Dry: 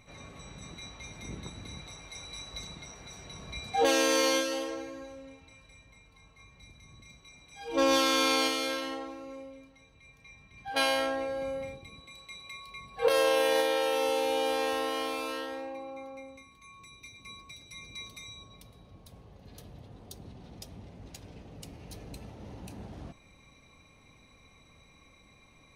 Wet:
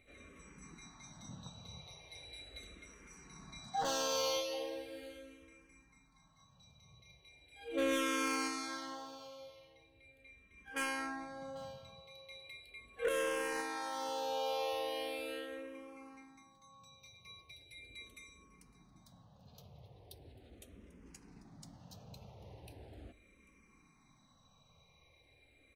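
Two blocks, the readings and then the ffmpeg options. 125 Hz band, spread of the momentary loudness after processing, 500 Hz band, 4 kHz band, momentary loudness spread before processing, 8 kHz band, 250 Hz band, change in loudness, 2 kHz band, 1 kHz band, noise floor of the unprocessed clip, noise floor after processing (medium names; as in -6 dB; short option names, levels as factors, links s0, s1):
-8.5 dB, 23 LU, -10.5 dB, -10.5 dB, 23 LU, -7.5 dB, -8.5 dB, -10.0 dB, -8.0 dB, -8.5 dB, -59 dBFS, -68 dBFS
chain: -filter_complex "[0:a]aeval=exprs='0.112*(abs(mod(val(0)/0.112+3,4)-2)-1)':c=same,bandreject=f=50:t=h:w=6,bandreject=f=100:t=h:w=6,aecho=1:1:793:0.1,asplit=2[s0][s1];[s1]afreqshift=-0.39[s2];[s0][s2]amix=inputs=2:normalize=1,volume=0.531"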